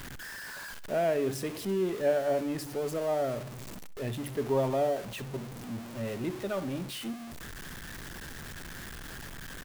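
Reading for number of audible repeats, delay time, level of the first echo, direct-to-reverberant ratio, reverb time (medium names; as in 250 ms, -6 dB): 2, 66 ms, -17.5 dB, no reverb, no reverb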